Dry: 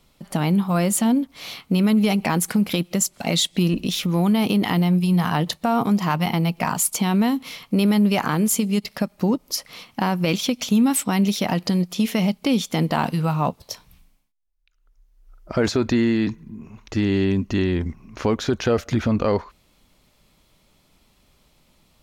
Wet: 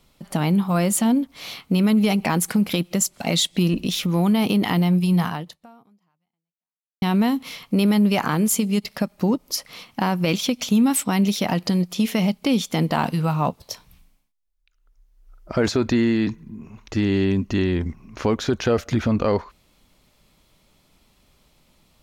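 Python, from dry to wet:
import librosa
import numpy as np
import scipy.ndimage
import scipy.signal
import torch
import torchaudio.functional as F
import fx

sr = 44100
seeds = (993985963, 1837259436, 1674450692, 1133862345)

y = fx.edit(x, sr, fx.fade_out_span(start_s=5.22, length_s=1.8, curve='exp'), tone=tone)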